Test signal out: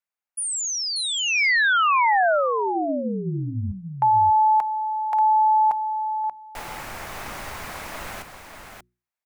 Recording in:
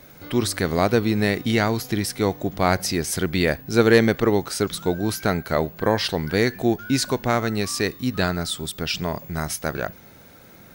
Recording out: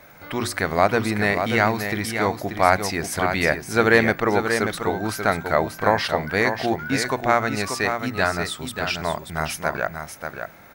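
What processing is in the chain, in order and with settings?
flat-topped bell 1,200 Hz +8 dB 2.3 octaves
mains-hum notches 60/120/180/240/300/360 Hz
on a send: single-tap delay 585 ms −7 dB
on the sum: level −3.5 dB

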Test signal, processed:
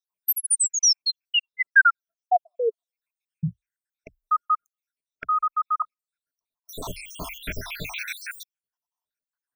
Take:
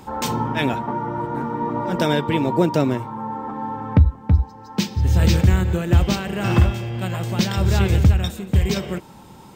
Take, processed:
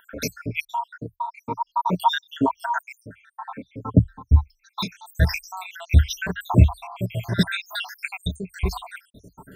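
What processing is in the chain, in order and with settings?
time-frequency cells dropped at random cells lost 80%
EQ curve with evenly spaced ripples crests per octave 1.6, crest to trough 9 dB
auto-filter bell 0.45 Hz 880–2,700 Hz +11 dB

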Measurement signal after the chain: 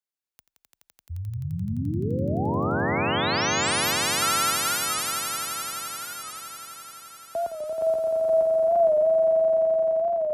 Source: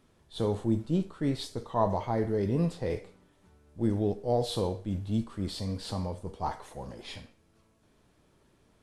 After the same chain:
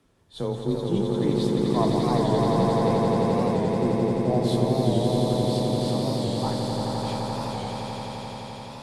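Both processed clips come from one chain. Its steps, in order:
echo that builds up and dies away 86 ms, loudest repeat 8, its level −4 dB
frequency shifter +19 Hz
wow of a warped record 45 rpm, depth 100 cents

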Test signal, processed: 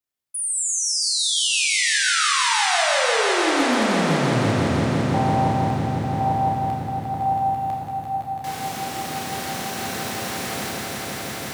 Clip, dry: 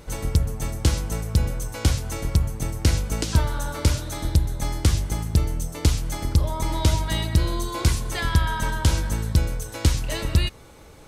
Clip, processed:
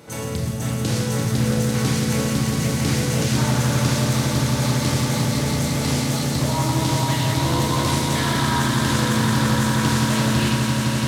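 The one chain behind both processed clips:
high-pass filter 110 Hz 24 dB per octave
in parallel at −2 dB: compressor whose output falls as the input rises −30 dBFS, ratio −1
on the sum: log-companded quantiser 8 bits
on a send: echo that builds up and dies away 169 ms, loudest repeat 5, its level −7 dB
on the sum: four-comb reverb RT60 1.3 s, combs from 25 ms, DRR −1.5 dB
highs frequency-modulated by the lows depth 0.3 ms
level −5 dB

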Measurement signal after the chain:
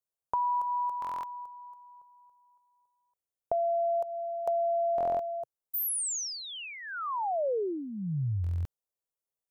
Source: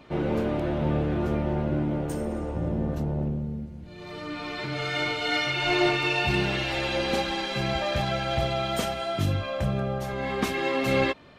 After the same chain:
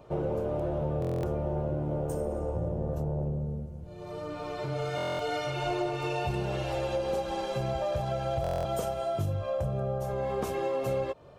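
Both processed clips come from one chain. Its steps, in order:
octave-band graphic EQ 125/250/500/2,000/4,000 Hz +4/−11/+7/−12/−9 dB
downward compressor 6 to 1, threshold −27 dBFS
buffer that repeats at 0:01.00/0:04.96/0:08.42, samples 1,024, times 9

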